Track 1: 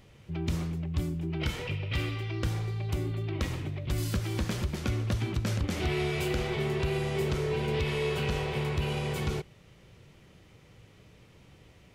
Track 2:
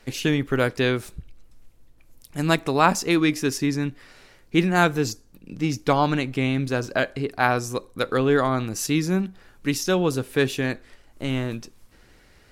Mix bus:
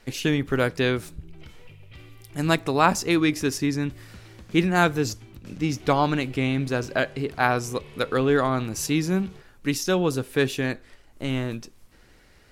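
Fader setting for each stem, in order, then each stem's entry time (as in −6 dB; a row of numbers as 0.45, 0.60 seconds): −15.5, −1.0 decibels; 0.00, 0.00 seconds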